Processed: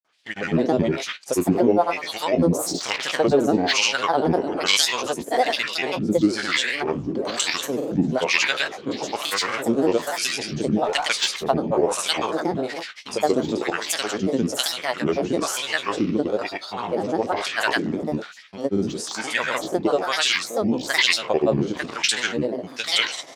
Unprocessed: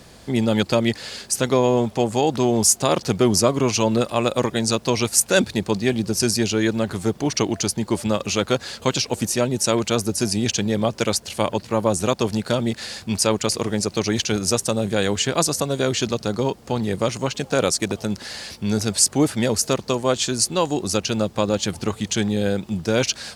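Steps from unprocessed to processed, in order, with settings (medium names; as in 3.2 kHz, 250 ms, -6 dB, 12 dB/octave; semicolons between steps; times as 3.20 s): spectral sustain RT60 0.43 s; gate with hold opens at -19 dBFS; treble shelf 3 kHz +12 dB; hum notches 50/100/150/200 Hz; LFO band-pass sine 1.1 Hz 250–2800 Hz; speakerphone echo 80 ms, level -8 dB; granulator, pitch spread up and down by 7 st; trim +6 dB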